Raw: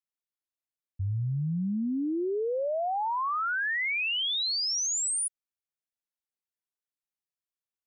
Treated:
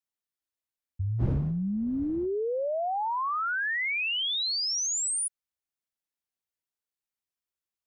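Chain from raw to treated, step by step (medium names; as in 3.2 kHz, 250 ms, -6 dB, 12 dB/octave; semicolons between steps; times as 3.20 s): 1.18–2.25 s: wind noise 220 Hz -37 dBFS; peaking EQ 70 Hz +10 dB 0.21 oct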